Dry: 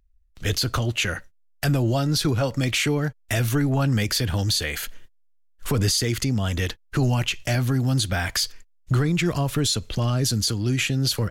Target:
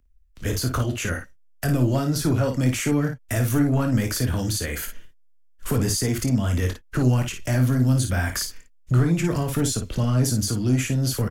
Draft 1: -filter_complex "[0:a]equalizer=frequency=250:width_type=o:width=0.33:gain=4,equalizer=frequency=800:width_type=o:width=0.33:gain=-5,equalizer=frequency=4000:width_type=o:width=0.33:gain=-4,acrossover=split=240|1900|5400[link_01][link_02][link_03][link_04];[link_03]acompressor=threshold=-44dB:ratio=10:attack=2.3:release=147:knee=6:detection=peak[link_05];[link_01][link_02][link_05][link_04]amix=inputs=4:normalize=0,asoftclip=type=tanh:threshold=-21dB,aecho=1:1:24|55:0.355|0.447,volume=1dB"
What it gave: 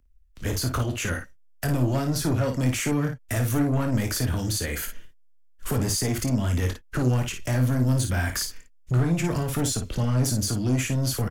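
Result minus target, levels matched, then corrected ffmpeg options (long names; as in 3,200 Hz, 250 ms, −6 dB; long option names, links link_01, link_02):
soft clipping: distortion +8 dB
-filter_complex "[0:a]equalizer=frequency=250:width_type=o:width=0.33:gain=4,equalizer=frequency=800:width_type=o:width=0.33:gain=-5,equalizer=frequency=4000:width_type=o:width=0.33:gain=-4,acrossover=split=240|1900|5400[link_01][link_02][link_03][link_04];[link_03]acompressor=threshold=-44dB:ratio=10:attack=2.3:release=147:knee=6:detection=peak[link_05];[link_01][link_02][link_05][link_04]amix=inputs=4:normalize=0,asoftclip=type=tanh:threshold=-14.5dB,aecho=1:1:24|55:0.355|0.447,volume=1dB"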